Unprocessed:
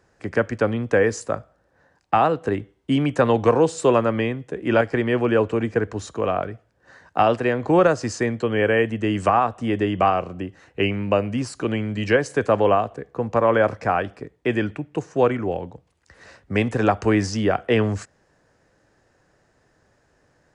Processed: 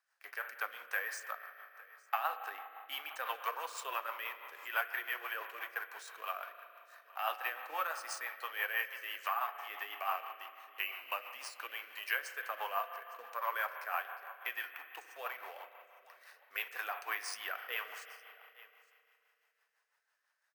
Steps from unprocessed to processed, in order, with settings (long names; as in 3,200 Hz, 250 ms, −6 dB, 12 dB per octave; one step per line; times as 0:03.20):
mu-law and A-law mismatch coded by A
high-pass filter 960 Hz 24 dB per octave
in parallel at +0.5 dB: downward compressor, threshold −38 dBFS, peak gain reduction 18 dB
on the sum: flanger 1.6 Hz, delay 2.4 ms, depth 5.4 ms, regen +58%
on a send: single-tap delay 861 ms −21.5 dB
on the sum: spring reverb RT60 2.8 s, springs 36 ms, chirp 70 ms, DRR 7.5 dB
rotating-speaker cabinet horn 6 Hz
bad sample-rate conversion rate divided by 3×, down filtered, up hold
level −5 dB